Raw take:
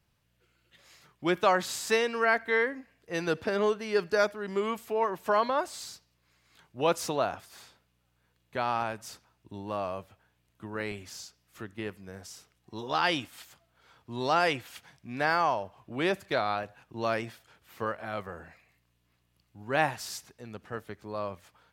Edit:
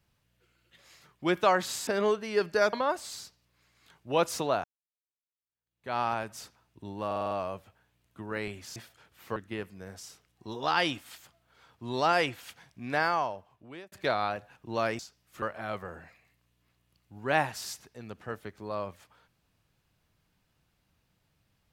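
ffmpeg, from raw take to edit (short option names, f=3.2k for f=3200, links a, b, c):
-filter_complex "[0:a]asplit=14[a][b][c][d][e][f][g][h][i][j][k][l][m][n];[a]atrim=end=1.872[o];[b]atrim=start=3.448:end=4.312[p];[c]atrim=start=5.418:end=7.33,asetpts=PTS-STARTPTS,afade=t=out:st=1.908:d=0.004:c=hsin[q];[d]atrim=start=7.33:end=9.802,asetpts=PTS-STARTPTS,afade=t=in:d=1.32:c=exp[r];[e]atrim=start=9.748:end=9.802[s];[f]atrim=start=9.748:end=9.802[t];[g]atrim=start=9.748:end=9.802[u];[h]atrim=start=9.748:end=9.802[v];[i]atrim=start=9.748:end=11.202[w];[j]atrim=start=17.258:end=17.862[x];[k]atrim=start=11.628:end=16.19,asetpts=PTS-STARTPTS,afade=t=out:st=3.582:d=0.98[y];[l]atrim=start=16.19:end=17.262,asetpts=PTS-STARTPTS,afade=t=in:d=0.004:c=hsin[z];[m]atrim=start=11.198:end=11.632[aa];[n]atrim=start=17.858[ab];[o][p]acrossfade=d=0.004:c1=hsin:c2=hsin[ac];[q][r]concat=n=2:v=0:a=1[ad];[ac][ad]acrossfade=d=0.004:c1=hsin:c2=hsin[ae];[ae][s]acrossfade=d=0.004:c1=hsin:c2=hsin[af];[af][t]acrossfade=d=0.004:c1=hsin:c2=hsin[ag];[ag][u]acrossfade=d=0.004:c1=hsin:c2=hsin[ah];[ah][v]acrossfade=d=0.004:c1=hsin:c2=hsin[ai];[ai][w]acrossfade=d=0.004:c1=hsin:c2=hsin[aj];[aj][x]acrossfade=d=0.004:c1=hsin:c2=hsin[ak];[y][z]concat=n=2:v=0:a=1[al];[ak][al]acrossfade=d=0.004:c1=hsin:c2=hsin[am];[am][aa]acrossfade=d=0.004:c1=hsin:c2=hsin[an];[an][ab]acrossfade=d=0.004:c1=hsin:c2=hsin"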